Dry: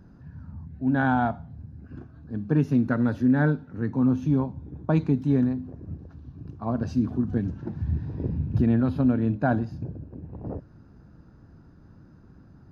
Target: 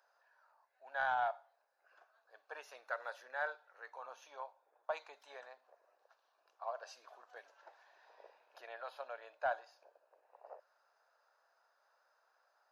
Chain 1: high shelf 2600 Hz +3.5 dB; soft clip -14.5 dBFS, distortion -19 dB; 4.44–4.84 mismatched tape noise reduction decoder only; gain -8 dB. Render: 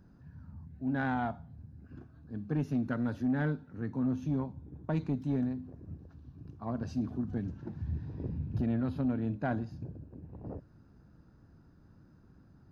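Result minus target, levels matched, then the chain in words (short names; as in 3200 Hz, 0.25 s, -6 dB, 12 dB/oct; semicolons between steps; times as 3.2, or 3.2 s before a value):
500 Hz band -4.0 dB
steep high-pass 570 Hz 48 dB/oct; high shelf 2600 Hz +3.5 dB; soft clip -14.5 dBFS, distortion -25 dB; 4.44–4.84 mismatched tape noise reduction decoder only; gain -8 dB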